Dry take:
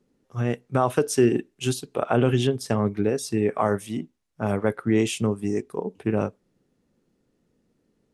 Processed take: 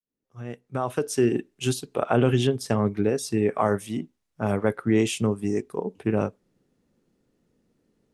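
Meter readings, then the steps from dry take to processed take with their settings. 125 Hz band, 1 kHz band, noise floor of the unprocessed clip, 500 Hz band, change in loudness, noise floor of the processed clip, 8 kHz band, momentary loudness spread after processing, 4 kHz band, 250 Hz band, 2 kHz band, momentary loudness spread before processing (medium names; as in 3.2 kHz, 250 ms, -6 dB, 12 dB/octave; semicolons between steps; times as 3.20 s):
-1.0 dB, -1.5 dB, -72 dBFS, -1.0 dB, -0.5 dB, -79 dBFS, -1.0 dB, 11 LU, -0.5 dB, -0.5 dB, -0.5 dB, 10 LU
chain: fade-in on the opening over 1.65 s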